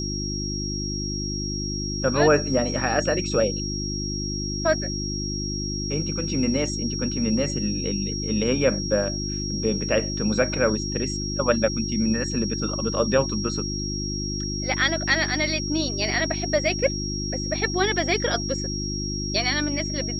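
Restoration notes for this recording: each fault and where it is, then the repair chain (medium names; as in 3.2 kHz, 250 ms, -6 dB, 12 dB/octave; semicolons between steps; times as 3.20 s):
hum 50 Hz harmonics 7 -30 dBFS
whine 5.6 kHz -30 dBFS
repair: band-stop 5.6 kHz, Q 30; de-hum 50 Hz, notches 7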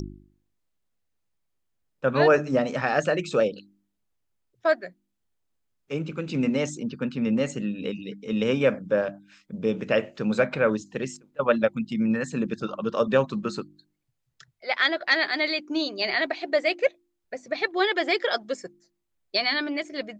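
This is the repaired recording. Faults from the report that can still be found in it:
nothing left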